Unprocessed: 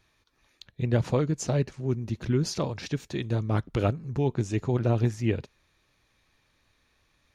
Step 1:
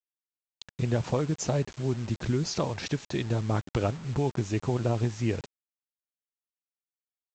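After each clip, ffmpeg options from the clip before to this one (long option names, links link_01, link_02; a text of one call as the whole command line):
ffmpeg -i in.wav -af "equalizer=frequency=850:width_type=o:width=1.2:gain=4,acompressor=threshold=-28dB:ratio=2.5,aresample=16000,acrusher=bits=7:mix=0:aa=0.000001,aresample=44100,volume=2.5dB" out.wav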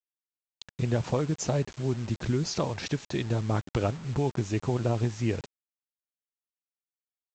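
ffmpeg -i in.wav -af anull out.wav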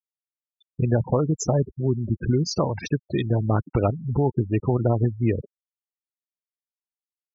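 ffmpeg -i in.wav -af "afftfilt=real='re*gte(hypot(re,im),0.0355)':imag='im*gte(hypot(re,im),0.0355)':win_size=1024:overlap=0.75,volume=6dB" out.wav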